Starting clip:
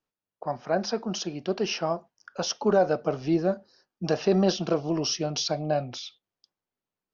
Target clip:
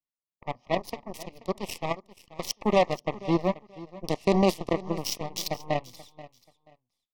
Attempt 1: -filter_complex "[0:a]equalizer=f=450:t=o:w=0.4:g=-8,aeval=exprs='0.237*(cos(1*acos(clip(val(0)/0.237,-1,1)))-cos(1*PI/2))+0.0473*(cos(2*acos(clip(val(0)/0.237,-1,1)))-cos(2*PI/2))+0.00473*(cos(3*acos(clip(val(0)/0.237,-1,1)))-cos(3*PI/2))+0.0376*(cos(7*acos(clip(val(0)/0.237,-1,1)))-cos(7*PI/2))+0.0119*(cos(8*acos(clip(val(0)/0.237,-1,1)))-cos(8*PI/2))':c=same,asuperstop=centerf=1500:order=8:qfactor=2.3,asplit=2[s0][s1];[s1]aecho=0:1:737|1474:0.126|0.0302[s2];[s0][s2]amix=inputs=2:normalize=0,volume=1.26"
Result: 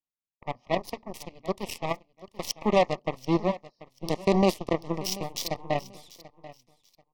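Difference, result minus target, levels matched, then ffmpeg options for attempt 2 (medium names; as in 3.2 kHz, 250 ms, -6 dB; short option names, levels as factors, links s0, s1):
echo 255 ms late
-filter_complex "[0:a]equalizer=f=450:t=o:w=0.4:g=-8,aeval=exprs='0.237*(cos(1*acos(clip(val(0)/0.237,-1,1)))-cos(1*PI/2))+0.0473*(cos(2*acos(clip(val(0)/0.237,-1,1)))-cos(2*PI/2))+0.00473*(cos(3*acos(clip(val(0)/0.237,-1,1)))-cos(3*PI/2))+0.0376*(cos(7*acos(clip(val(0)/0.237,-1,1)))-cos(7*PI/2))+0.0119*(cos(8*acos(clip(val(0)/0.237,-1,1)))-cos(8*PI/2))':c=same,asuperstop=centerf=1500:order=8:qfactor=2.3,asplit=2[s0][s1];[s1]aecho=0:1:482|964:0.126|0.0302[s2];[s0][s2]amix=inputs=2:normalize=0,volume=1.26"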